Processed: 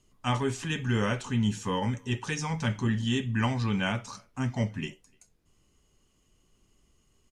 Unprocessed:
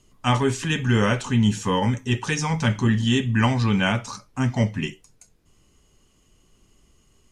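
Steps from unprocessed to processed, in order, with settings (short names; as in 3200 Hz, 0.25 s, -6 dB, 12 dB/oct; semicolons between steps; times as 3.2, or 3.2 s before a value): speakerphone echo 0.3 s, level -30 dB; gain -7.5 dB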